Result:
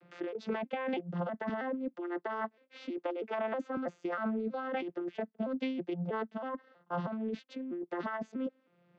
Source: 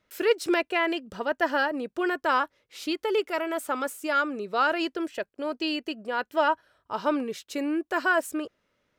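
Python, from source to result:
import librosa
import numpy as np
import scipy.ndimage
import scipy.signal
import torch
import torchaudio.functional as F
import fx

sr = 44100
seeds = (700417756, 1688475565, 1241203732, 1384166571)

y = fx.vocoder_arp(x, sr, chord='major triad', root=53, every_ms=321)
y = fx.highpass(y, sr, hz=230.0, slope=24, at=(1.49, 3.77))
y = fx.over_compress(y, sr, threshold_db=-33.0, ratio=-1.0)
y = fx.air_absorb(y, sr, metres=210.0)
y = fx.band_squash(y, sr, depth_pct=40)
y = y * 10.0 ** (-2.0 / 20.0)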